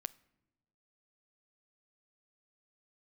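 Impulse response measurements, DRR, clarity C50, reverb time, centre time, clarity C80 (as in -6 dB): 18.5 dB, 22.0 dB, 1.1 s, 1 ms, 25.0 dB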